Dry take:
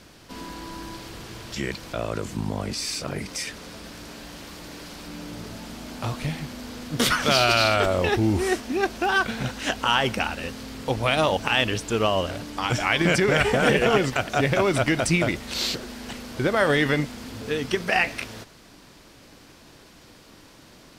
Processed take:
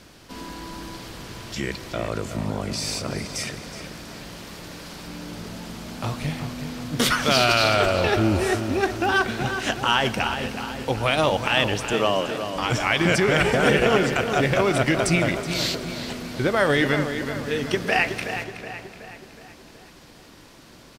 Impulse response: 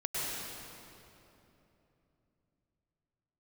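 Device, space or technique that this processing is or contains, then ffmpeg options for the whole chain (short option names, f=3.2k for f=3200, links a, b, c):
saturated reverb return: -filter_complex "[0:a]asplit=2[a][b];[1:a]atrim=start_sample=2205[c];[b][c]afir=irnorm=-1:irlink=0,asoftclip=type=tanh:threshold=-16.5dB,volume=-18.5dB[d];[a][d]amix=inputs=2:normalize=0,asettb=1/sr,asplit=3[e][f][g];[e]atrim=end=11.934[h];[f]atrim=start=11.93:end=12.56,asetpts=PTS-STARTPTS,afade=t=in:d=0.004:c=qsin,afade=t=out:st=0.626:d=0.004:c=qsin,highpass=f=170:w=0.5412,highpass=f=170:w=1.3066[i];[g]atrim=start=12.556[j];[h][i]acrossfade=d=0.004:c1=hsin:c2=qsin[k];[k][j]acrossfade=d=0.004:c1=qsin:c2=hsin,asplit=2[l][m];[m]adelay=372,lowpass=f=3.9k:p=1,volume=-8.5dB,asplit=2[n][o];[o]adelay=372,lowpass=f=3.9k:p=1,volume=0.53,asplit=2[p][q];[q]adelay=372,lowpass=f=3.9k:p=1,volume=0.53,asplit=2[r][s];[s]adelay=372,lowpass=f=3.9k:p=1,volume=0.53,asplit=2[t][u];[u]adelay=372,lowpass=f=3.9k:p=1,volume=0.53,asplit=2[v][w];[w]adelay=372,lowpass=f=3.9k:p=1,volume=0.53[x];[l][n][p][r][t][v][x]amix=inputs=7:normalize=0"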